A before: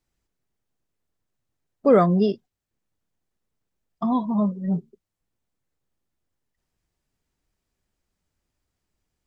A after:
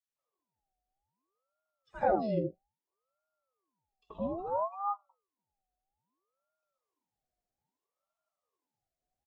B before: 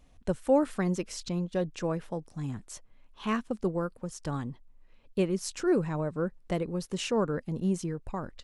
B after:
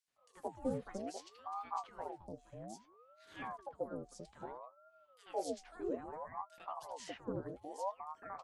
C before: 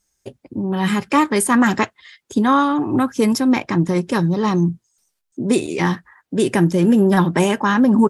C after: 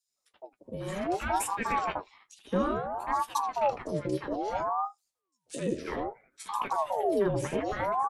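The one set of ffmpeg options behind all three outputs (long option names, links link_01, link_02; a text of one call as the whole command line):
ffmpeg -i in.wav -filter_complex "[0:a]flanger=delay=7.3:depth=3.6:regen=52:speed=0.3:shape=sinusoidal,acrossover=split=920|3500[link_01][link_02][link_03];[link_02]adelay=80[link_04];[link_01]adelay=160[link_05];[link_05][link_04][link_03]amix=inputs=3:normalize=0,afreqshift=-390,aeval=exprs='val(0)*sin(2*PI*680*n/s+680*0.5/0.61*sin(2*PI*0.61*n/s))':channel_layout=same,volume=-6dB" out.wav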